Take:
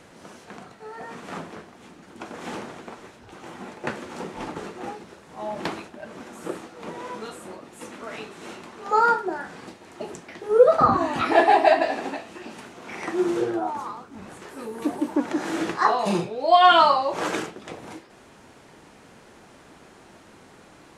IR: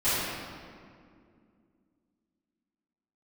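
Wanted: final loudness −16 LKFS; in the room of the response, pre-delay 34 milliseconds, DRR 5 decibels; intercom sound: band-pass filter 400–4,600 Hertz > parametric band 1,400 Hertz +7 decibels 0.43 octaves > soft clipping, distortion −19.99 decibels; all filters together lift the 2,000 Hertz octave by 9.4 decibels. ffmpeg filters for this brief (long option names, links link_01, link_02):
-filter_complex "[0:a]equalizer=frequency=2000:width_type=o:gain=7.5,asplit=2[link_01][link_02];[1:a]atrim=start_sample=2205,adelay=34[link_03];[link_02][link_03]afir=irnorm=-1:irlink=0,volume=-19dB[link_04];[link_01][link_04]amix=inputs=2:normalize=0,highpass=400,lowpass=4600,equalizer=frequency=1400:width_type=o:width=0.43:gain=7,asoftclip=threshold=-2.5dB,volume=2.5dB"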